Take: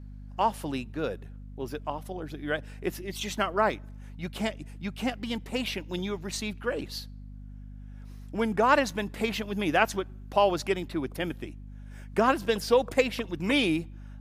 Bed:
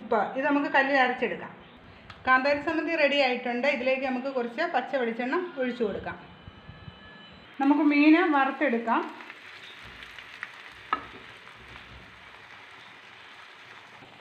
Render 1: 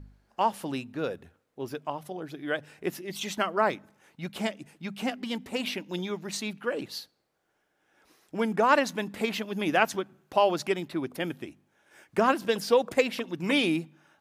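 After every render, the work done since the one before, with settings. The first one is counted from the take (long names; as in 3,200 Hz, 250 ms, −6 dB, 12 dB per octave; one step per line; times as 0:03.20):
hum removal 50 Hz, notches 5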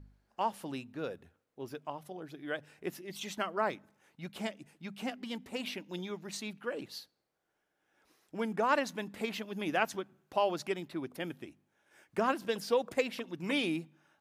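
level −7 dB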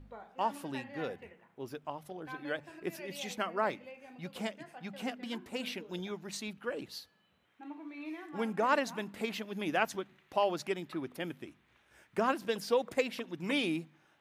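mix in bed −24 dB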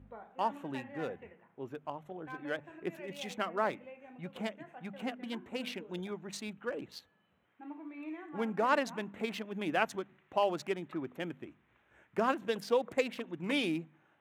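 adaptive Wiener filter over 9 samples
high-pass filter 54 Hz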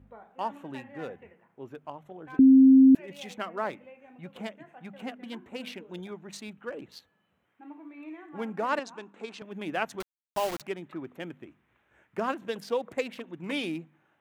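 0:02.39–0:02.95: beep over 265 Hz −12 dBFS
0:08.79–0:09.42: loudspeaker in its box 330–8,300 Hz, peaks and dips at 620 Hz −7 dB, 2,000 Hz −10 dB, 3,100 Hz −4 dB
0:10.00–0:10.61: bit-depth reduction 6 bits, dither none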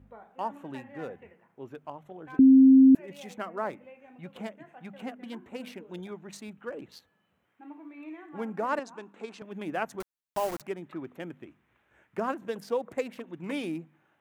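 dynamic equaliser 3,400 Hz, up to −8 dB, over −51 dBFS, Q 0.89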